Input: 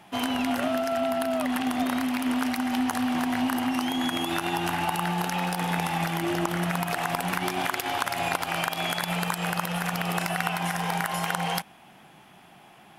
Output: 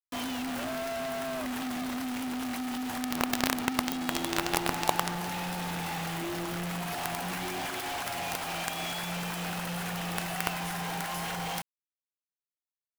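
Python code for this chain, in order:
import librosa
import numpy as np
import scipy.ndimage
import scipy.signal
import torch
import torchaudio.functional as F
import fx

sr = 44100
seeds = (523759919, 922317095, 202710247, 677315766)

y = fx.peak_eq(x, sr, hz=420.0, db=8.5, octaves=2.7, at=(3.02, 5.16))
y = fx.quant_companded(y, sr, bits=2)
y = F.gain(torch.from_numpy(y), -8.5).numpy()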